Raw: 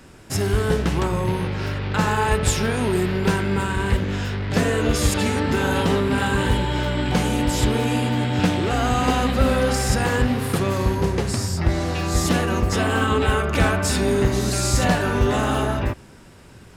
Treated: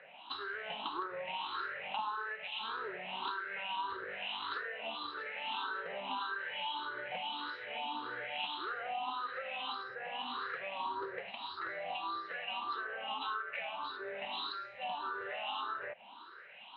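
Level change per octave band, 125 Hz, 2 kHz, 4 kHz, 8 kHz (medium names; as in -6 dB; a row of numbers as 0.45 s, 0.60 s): under -40 dB, -13.0 dB, -11.5 dB, under -40 dB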